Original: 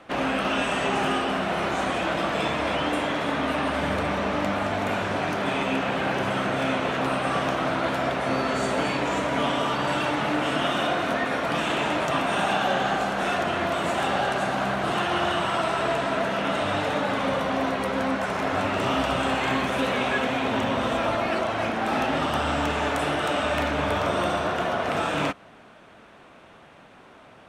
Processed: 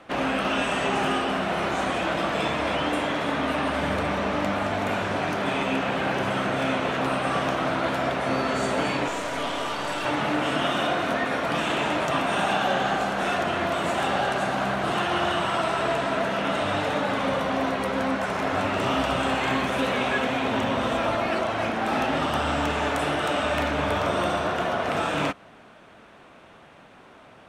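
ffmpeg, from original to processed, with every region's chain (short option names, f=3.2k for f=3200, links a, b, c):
-filter_complex "[0:a]asettb=1/sr,asplit=3[a][b][c];[a]atrim=end=9.084[d];[b]atrim=start=9.08:end=10.05,asetpts=PTS-STARTPTS,afade=t=in:d=0.004:c=qsin,afade=t=out:st=0.966:d=0.004:c=qsin,acrossover=split=3300[e][f];[f]acompressor=threshold=-44dB:ratio=4:attack=1:release=60[g];[e][g]amix=inputs=2:normalize=0,bass=f=250:g=-8,treble=f=4k:g=11,aeval=exprs='(tanh(11.2*val(0)+0.6)-tanh(0.6))/11.2':c=same[h];[c]atrim=start=10.046[i];[d][h]acrossfade=d=0.004:c1=hsin:c2=qsin[j];[j][i]acrossfade=d=0.004:c1=qsin:c2=hsin"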